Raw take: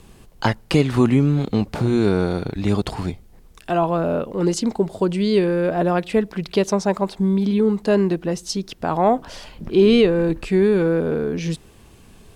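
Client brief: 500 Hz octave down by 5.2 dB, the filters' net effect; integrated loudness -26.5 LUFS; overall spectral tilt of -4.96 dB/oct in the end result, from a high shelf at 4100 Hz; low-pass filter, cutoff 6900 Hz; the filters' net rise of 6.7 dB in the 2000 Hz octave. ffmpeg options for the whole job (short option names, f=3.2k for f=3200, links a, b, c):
-af "lowpass=6.9k,equalizer=f=500:t=o:g=-7.5,equalizer=f=2k:t=o:g=8.5,highshelf=f=4.1k:g=3.5,volume=-5dB"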